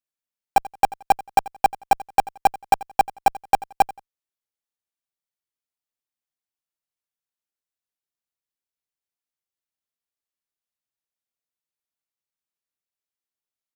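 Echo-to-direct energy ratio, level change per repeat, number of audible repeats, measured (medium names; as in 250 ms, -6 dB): -19.0 dB, -11.0 dB, 2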